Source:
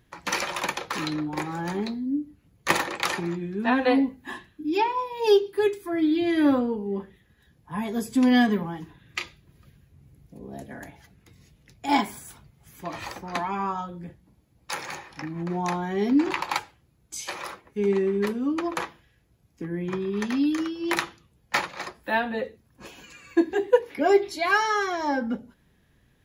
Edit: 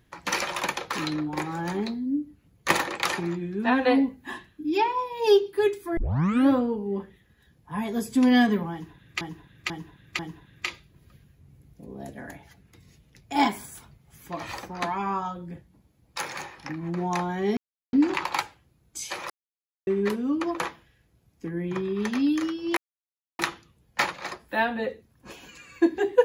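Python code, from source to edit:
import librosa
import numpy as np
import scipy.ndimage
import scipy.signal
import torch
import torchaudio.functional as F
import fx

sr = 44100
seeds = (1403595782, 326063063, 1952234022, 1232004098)

y = fx.edit(x, sr, fx.tape_start(start_s=5.97, length_s=0.52),
    fx.repeat(start_s=8.72, length_s=0.49, count=4),
    fx.insert_silence(at_s=16.1, length_s=0.36),
    fx.silence(start_s=17.47, length_s=0.57),
    fx.insert_silence(at_s=20.94, length_s=0.62), tone=tone)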